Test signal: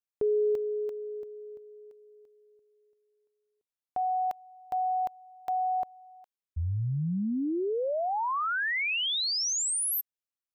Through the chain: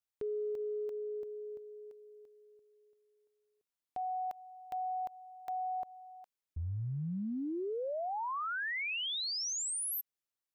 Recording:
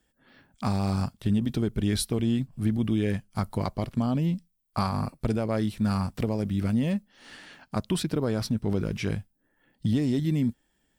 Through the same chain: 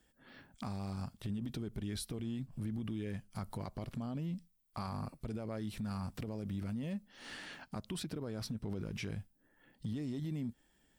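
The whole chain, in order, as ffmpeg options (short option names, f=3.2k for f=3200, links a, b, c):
-af "acompressor=threshold=-35dB:ratio=6:attack=0.14:release=159:knee=6:detection=peak"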